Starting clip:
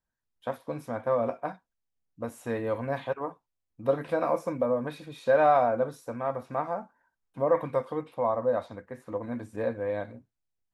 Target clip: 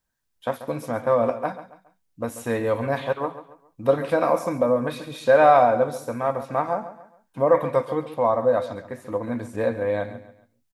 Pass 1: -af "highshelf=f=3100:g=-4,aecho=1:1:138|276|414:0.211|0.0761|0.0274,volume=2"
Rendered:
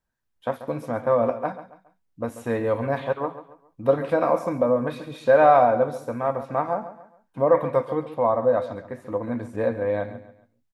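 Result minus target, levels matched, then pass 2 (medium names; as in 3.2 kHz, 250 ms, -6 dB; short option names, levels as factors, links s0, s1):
8 kHz band -8.0 dB
-af "highshelf=f=3100:g=5.5,aecho=1:1:138|276|414:0.211|0.0761|0.0274,volume=2"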